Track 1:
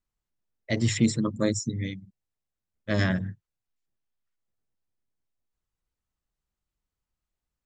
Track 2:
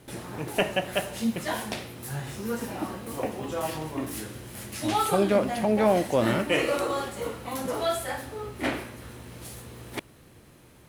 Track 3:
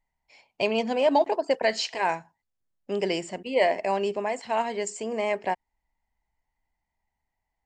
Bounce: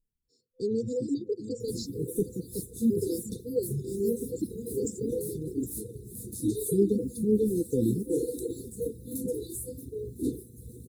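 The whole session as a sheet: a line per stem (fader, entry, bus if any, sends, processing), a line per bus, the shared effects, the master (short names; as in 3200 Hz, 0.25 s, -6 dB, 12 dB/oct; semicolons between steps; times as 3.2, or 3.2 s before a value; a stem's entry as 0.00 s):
-14.0 dB, 0.00 s, no send, echo send -6 dB, dry
+2.0 dB, 1.60 s, no send, no echo send, dry
-0.5 dB, 0.00 s, no send, echo send -12 dB, bell 5100 Hz +6.5 dB 0.42 oct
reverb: off
echo: echo 0.764 s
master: reverb removal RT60 1 s; FFT band-reject 510–3500 Hz; band shelf 2600 Hz -15 dB 2.7 oct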